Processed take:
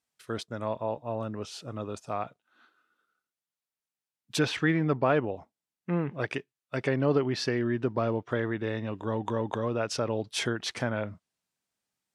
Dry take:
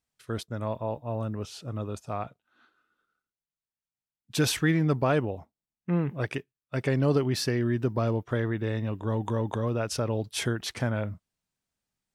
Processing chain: treble ducked by the level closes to 2900 Hz, closed at -21.5 dBFS; HPF 250 Hz 6 dB/oct; gain +1.5 dB

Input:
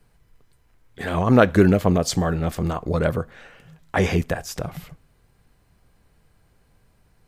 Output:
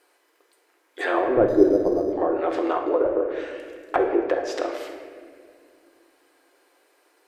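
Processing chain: brick-wall FIR high-pass 280 Hz; in parallel at -5.5 dB: one-sided clip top -18.5 dBFS; on the sum: treble ducked by the level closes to 440 Hz, closed at -16.5 dBFS; reverb RT60 2.0 s, pre-delay 6 ms, DRR 2 dB; 1.48–2.13 decimation joined by straight lines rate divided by 8×

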